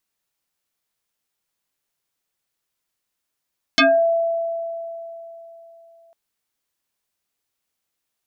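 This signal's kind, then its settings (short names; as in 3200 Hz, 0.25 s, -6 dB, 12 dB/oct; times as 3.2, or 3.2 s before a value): FM tone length 2.35 s, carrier 668 Hz, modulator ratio 1.41, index 5.5, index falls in 0.28 s exponential, decay 3.50 s, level -10 dB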